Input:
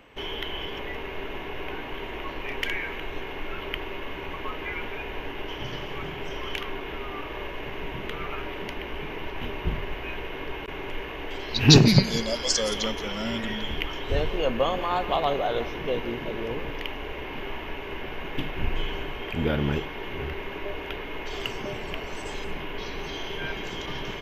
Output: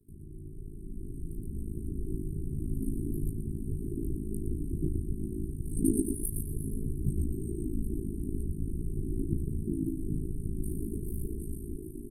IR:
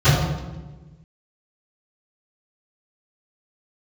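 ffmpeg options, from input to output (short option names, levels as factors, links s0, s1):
-filter_complex "[0:a]asetrate=88200,aresample=44100,acrossover=split=96|510|4200[s0][s1][s2][s3];[s0]acompressor=threshold=0.00794:ratio=4[s4];[s1]acompressor=threshold=0.00891:ratio=4[s5];[s2]acompressor=threshold=0.02:ratio=4[s6];[s3]acompressor=threshold=0.00447:ratio=4[s7];[s4][s5][s6][s7]amix=inputs=4:normalize=0,afftfilt=real='re*(1-between(b*sr/4096,400,8300))':imag='im*(1-between(b*sr/4096,400,8300))':win_size=4096:overlap=0.75,aecho=1:1:117|234|351:0.501|0.125|0.0313,flanger=delay=16:depth=6.2:speed=0.31,bandreject=f=214.6:t=h:w=4,bandreject=f=429.2:t=h:w=4,bandreject=f=643.8:t=h:w=4,bandreject=f=858.4:t=h:w=4,bandreject=f=1073:t=h:w=4,bandreject=f=1287.6:t=h:w=4,bandreject=f=1502.2:t=h:w=4,bandreject=f=1716.8:t=h:w=4,bandreject=f=1931.4:t=h:w=4,bandreject=f=2146:t=h:w=4,bandreject=f=2360.6:t=h:w=4,bandreject=f=2575.2:t=h:w=4,bandreject=f=2789.8:t=h:w=4,bandreject=f=3004.4:t=h:w=4,bandreject=f=3219:t=h:w=4,bandreject=f=3433.6:t=h:w=4,bandreject=f=3648.2:t=h:w=4,bandreject=f=3862.8:t=h:w=4,acrossover=split=360|1100|1800[s8][s9][s10][s11];[s10]acrusher=bits=7:mix=0:aa=0.000001[s12];[s8][s9][s12][s11]amix=inputs=4:normalize=0,aresample=32000,aresample=44100,dynaudnorm=f=240:g=11:m=3.98,aeval=exprs='val(0)*sin(2*PI*27*n/s)':c=same,volume=1.26"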